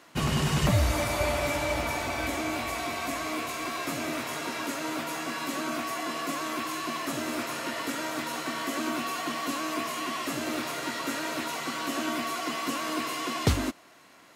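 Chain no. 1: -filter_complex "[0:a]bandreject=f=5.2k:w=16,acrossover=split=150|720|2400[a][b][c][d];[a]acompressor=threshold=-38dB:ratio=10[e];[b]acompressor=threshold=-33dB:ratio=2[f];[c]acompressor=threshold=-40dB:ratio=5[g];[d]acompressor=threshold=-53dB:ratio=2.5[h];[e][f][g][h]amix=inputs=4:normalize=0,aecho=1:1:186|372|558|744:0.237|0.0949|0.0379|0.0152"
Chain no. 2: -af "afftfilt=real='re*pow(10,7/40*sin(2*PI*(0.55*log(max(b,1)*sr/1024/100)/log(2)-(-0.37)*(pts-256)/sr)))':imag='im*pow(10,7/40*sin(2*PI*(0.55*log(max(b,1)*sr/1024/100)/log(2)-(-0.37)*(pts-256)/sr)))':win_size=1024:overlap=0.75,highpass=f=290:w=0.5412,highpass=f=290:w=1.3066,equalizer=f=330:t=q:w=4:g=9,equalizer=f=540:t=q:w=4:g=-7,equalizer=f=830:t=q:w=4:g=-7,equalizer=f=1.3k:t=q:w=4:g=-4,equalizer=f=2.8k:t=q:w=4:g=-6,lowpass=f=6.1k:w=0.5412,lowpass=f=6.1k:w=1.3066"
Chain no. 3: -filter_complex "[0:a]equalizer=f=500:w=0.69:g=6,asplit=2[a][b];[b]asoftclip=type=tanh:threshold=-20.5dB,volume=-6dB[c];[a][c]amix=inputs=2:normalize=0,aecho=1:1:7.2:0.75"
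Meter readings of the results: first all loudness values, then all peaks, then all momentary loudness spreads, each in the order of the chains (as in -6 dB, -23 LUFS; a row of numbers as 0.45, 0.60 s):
-34.5, -31.5, -22.5 LUFS; -16.5, -11.5, -4.0 dBFS; 4, 5, 5 LU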